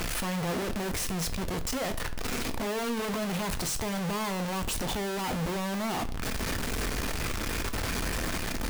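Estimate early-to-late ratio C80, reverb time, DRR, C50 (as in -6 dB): 20.0 dB, 0.40 s, 8.0 dB, 15.5 dB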